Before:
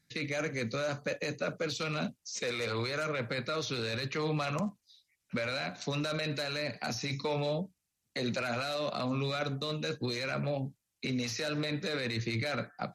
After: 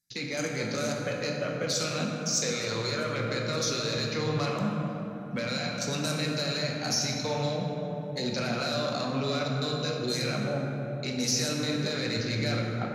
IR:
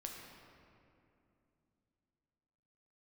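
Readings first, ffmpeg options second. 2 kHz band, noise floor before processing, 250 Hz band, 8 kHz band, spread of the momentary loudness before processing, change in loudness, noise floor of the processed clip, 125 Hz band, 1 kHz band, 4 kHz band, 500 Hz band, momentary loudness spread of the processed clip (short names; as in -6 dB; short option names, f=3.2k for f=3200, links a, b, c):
+2.0 dB, -83 dBFS, +5.0 dB, +12.0 dB, 4 LU, +4.5 dB, -36 dBFS, +5.0 dB, +3.5 dB, +6.5 dB, +3.5 dB, 5 LU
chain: -filter_complex "[0:a]aexciter=amount=5.6:drive=2.9:freq=4.6k,afwtdn=0.00794[a];[1:a]atrim=start_sample=2205,asetrate=29106,aresample=44100[b];[a][b]afir=irnorm=-1:irlink=0,volume=3dB"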